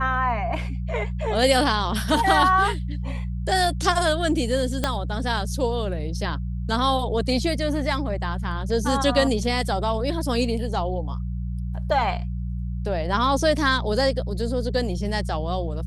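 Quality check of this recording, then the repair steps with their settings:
mains hum 60 Hz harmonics 3 −28 dBFS
0:04.84: click −8 dBFS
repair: click removal
hum removal 60 Hz, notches 3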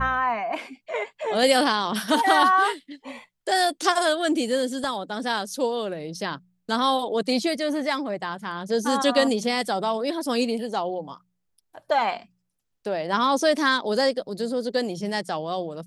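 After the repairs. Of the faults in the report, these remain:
0:04.84: click

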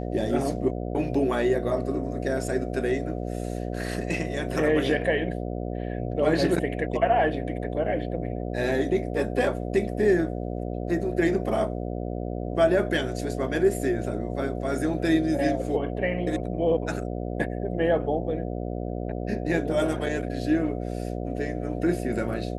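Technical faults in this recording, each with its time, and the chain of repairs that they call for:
mains buzz 60 Hz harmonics 12 −31 dBFS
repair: hum removal 60 Hz, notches 12

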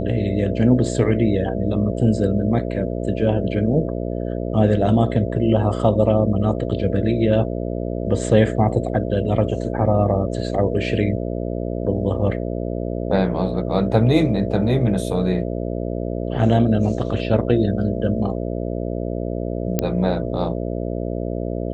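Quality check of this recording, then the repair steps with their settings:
mains buzz 60 Hz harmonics 11 −25 dBFS
0:19.79: click −5 dBFS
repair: click removal
hum removal 60 Hz, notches 11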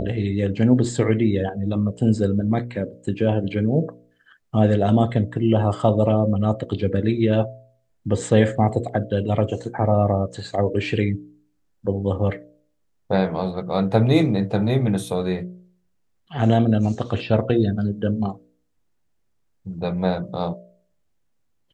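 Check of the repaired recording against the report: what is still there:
none of them is left

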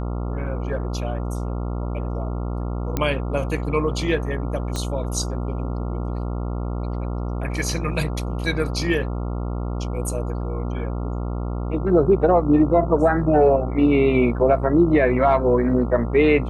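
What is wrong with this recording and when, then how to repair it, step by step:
mains buzz 60 Hz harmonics 23 −26 dBFS
0:02.97: click −9 dBFS
0:04.76: click −14 dBFS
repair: click removal
hum removal 60 Hz, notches 23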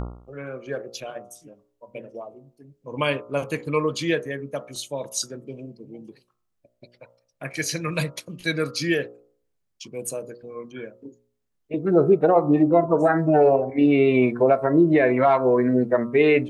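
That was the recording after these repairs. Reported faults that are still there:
0:04.76: click

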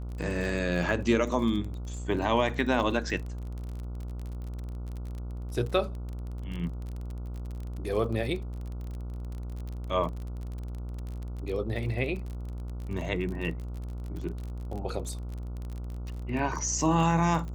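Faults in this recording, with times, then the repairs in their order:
mains buzz 60 Hz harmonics 24 −36 dBFS
surface crackle 35 per second −35 dBFS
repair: click removal
hum removal 60 Hz, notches 24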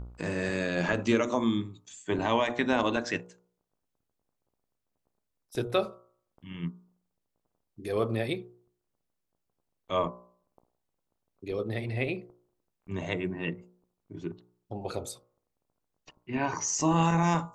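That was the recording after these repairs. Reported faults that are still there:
none of them is left

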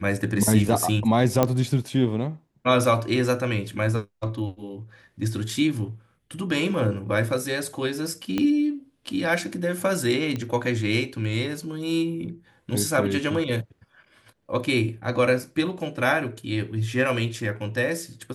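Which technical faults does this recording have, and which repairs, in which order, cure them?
0:01.43: click −6 dBFS
0:08.38: click −12 dBFS
0:10.36: click −17 dBFS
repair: click removal

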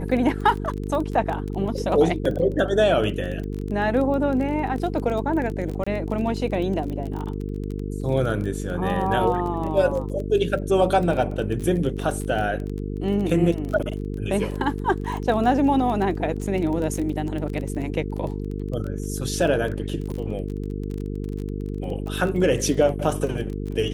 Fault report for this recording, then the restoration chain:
mains buzz 50 Hz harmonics 9 −29 dBFS
surface crackle 21 per second −28 dBFS
0:02.25: drop-out 3.9 ms
0:05.84–0:05.87: drop-out 25 ms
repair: click removal
hum removal 50 Hz, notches 9
repair the gap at 0:02.25, 3.9 ms
repair the gap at 0:05.84, 25 ms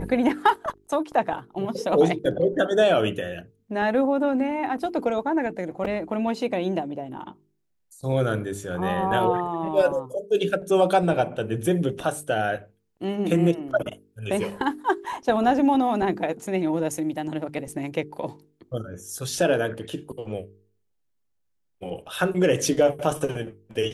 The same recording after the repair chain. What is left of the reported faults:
none of them is left

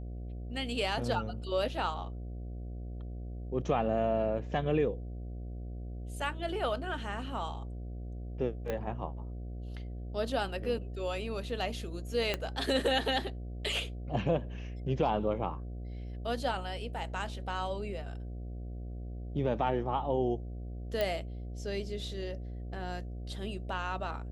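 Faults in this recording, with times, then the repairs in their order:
mains buzz 60 Hz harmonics 12 −40 dBFS
0:08.70: click −21 dBFS
0:12.34: click −16 dBFS
0:21.01: click −18 dBFS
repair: click removal
hum removal 60 Hz, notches 12

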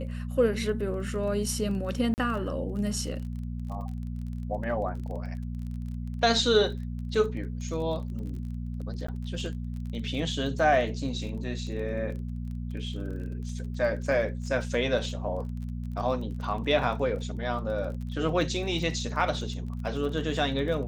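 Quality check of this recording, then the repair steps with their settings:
surface crackle 27 per second −37 dBFS
mains hum 60 Hz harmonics 4 −34 dBFS
0:02.14–0:02.18: drop-out 39 ms
0:09.07–0:09.08: drop-out 14 ms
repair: click removal
hum removal 60 Hz, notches 4
repair the gap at 0:02.14, 39 ms
repair the gap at 0:09.07, 14 ms

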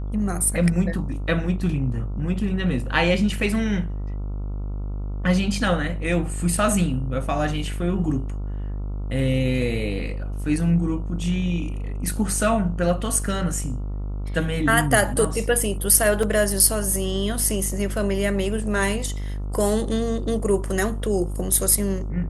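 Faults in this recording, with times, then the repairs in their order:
mains buzz 50 Hz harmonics 28 −28 dBFS
0:16.23: drop-out 2.9 ms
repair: hum removal 50 Hz, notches 28
repair the gap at 0:16.23, 2.9 ms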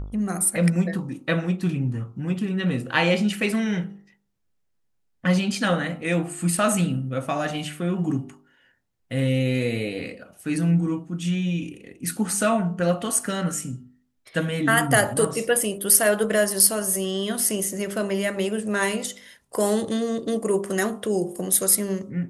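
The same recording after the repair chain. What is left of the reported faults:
none of them is left

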